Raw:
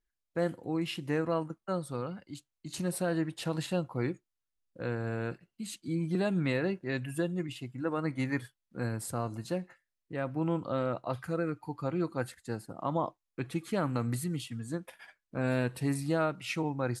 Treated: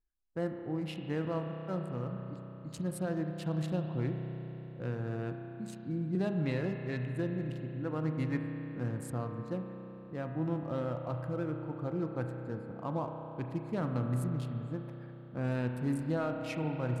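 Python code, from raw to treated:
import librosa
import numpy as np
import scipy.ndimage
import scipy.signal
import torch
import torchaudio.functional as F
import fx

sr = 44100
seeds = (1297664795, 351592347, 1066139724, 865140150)

y = fx.wiener(x, sr, points=15)
y = fx.low_shelf(y, sr, hz=220.0, db=7.0)
y = fx.rev_spring(y, sr, rt60_s=3.9, pass_ms=(32,), chirp_ms=45, drr_db=4.0)
y = y * 10.0 ** (-6.0 / 20.0)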